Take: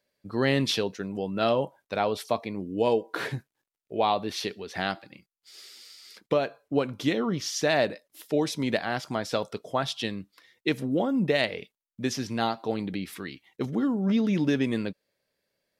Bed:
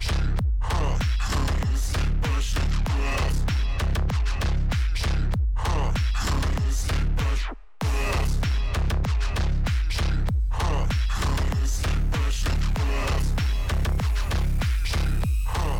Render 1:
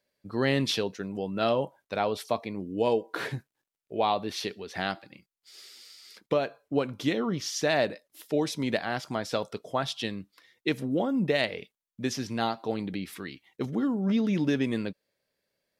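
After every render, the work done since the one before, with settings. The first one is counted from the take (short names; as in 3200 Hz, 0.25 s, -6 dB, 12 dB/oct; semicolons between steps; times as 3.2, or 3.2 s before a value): gain -1.5 dB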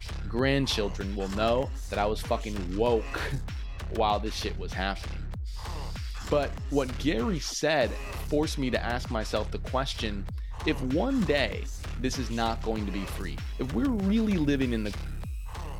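add bed -12 dB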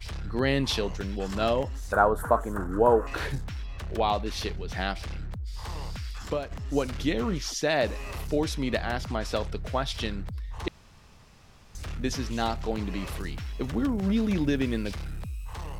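1.92–3.07 EQ curve 170 Hz 0 dB, 720 Hz +6 dB, 1500 Hz +13 dB, 2300 Hz -18 dB, 5200 Hz -19 dB, 7500 Hz -1 dB, 11000 Hz +5 dB; 5.99–6.51 fade out equal-power, to -11 dB; 10.68–11.75 room tone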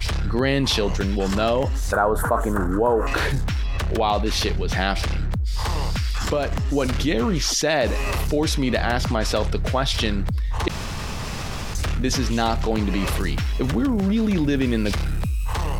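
fast leveller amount 70%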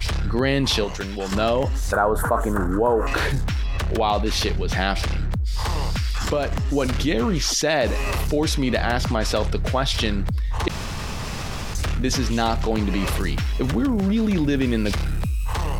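0.84–1.32 low shelf 400 Hz -9 dB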